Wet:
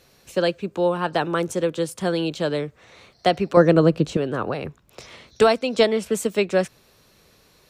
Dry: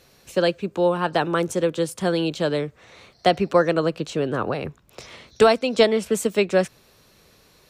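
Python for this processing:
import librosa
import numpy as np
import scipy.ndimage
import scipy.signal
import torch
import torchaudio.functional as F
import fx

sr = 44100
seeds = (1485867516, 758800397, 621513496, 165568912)

y = fx.low_shelf(x, sr, hz=460.0, db=12.0, at=(3.57, 4.17))
y = F.gain(torch.from_numpy(y), -1.0).numpy()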